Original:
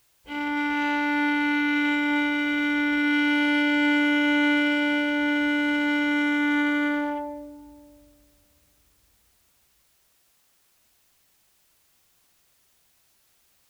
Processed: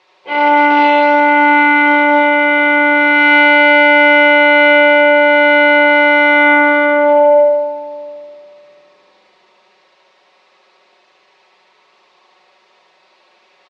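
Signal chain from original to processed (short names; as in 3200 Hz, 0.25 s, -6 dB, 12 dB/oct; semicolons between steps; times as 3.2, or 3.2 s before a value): speaker cabinet 420–3700 Hz, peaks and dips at 430 Hz +7 dB, 600 Hz +4 dB, 1000 Hz +6 dB, 1500 Hz -6 dB, 3100 Hz -6 dB; comb 5.4 ms, depth 68%; on a send: feedback echo 75 ms, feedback 59%, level -3 dB; on the sum: maximiser +17 dB; gain -1 dB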